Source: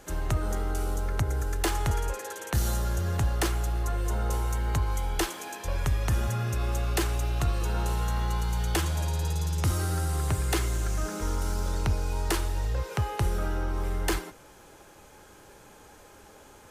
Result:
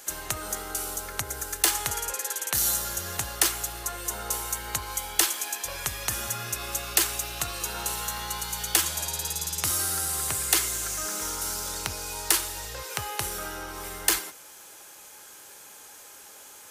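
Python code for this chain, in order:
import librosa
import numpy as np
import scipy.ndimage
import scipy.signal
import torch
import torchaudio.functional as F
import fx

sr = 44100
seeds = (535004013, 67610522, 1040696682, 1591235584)

y = fx.tilt_eq(x, sr, slope=4.0)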